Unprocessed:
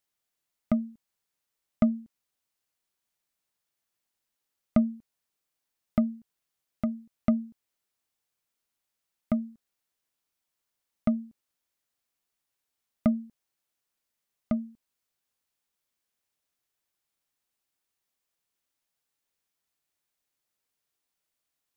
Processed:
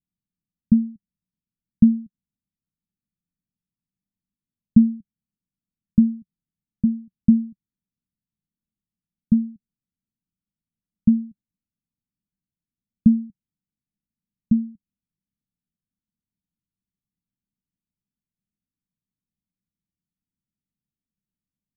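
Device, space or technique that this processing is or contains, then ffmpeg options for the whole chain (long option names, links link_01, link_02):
the neighbour's flat through the wall: -af "lowpass=frequency=240:width=0.5412,lowpass=frequency=240:width=1.3066,equalizer=frequency=190:width_type=o:width=0.62:gain=8,volume=7dB"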